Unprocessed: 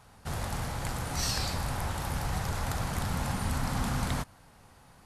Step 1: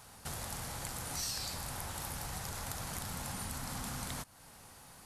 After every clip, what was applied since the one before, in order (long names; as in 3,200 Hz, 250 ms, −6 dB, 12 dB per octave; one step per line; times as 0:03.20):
high-shelf EQ 4,500 Hz +11.5 dB
downward compressor 2.5 to 1, threshold −41 dBFS, peak gain reduction 12.5 dB
low-shelf EQ 130 Hz −4.5 dB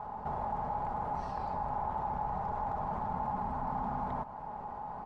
low-pass with resonance 870 Hz, resonance Q 4.9
comb filter 4.8 ms, depth 40%
envelope flattener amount 50%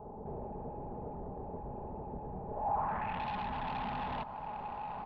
soft clipping −35.5 dBFS, distortion −11 dB
low-pass filter sweep 420 Hz → 3,700 Hz, 0:02.47–0:03.24
level +1.5 dB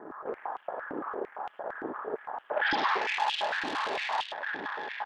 harmonic generator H 6 −7 dB, 7 −23 dB, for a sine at −25 dBFS
single-tap delay 104 ms −7.5 dB
high-pass on a step sequencer 8.8 Hz 310–3,000 Hz